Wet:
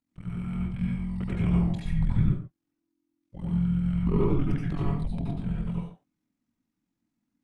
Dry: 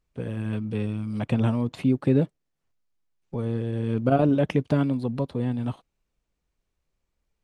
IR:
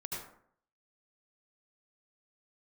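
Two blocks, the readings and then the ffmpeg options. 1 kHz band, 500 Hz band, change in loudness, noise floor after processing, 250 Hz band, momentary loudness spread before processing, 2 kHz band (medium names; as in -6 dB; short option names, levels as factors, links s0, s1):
-9.0 dB, -9.0 dB, -3.0 dB, -83 dBFS, -3.5 dB, 10 LU, -6.5 dB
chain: -filter_complex "[0:a]afreqshift=-290,tremolo=f=43:d=0.947[s0];[1:a]atrim=start_sample=2205,afade=t=out:st=0.29:d=0.01,atrim=end_sample=13230[s1];[s0][s1]afir=irnorm=-1:irlink=0"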